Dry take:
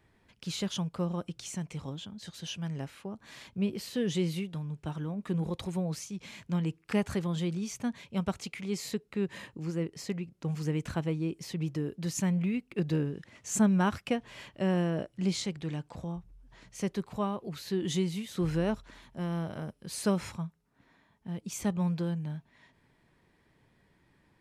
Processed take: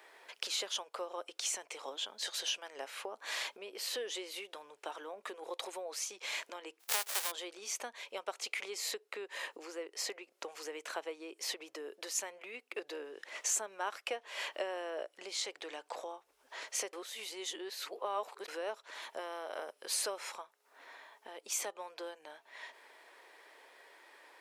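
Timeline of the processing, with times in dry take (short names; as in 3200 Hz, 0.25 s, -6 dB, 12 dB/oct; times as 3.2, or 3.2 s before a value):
6.79–7.3 spectral whitening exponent 0.1
16.93–18.48 reverse
whole clip: compressor 4:1, threshold -46 dBFS; inverse Chebyshev high-pass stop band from 180 Hz, stop band 50 dB; gain +13 dB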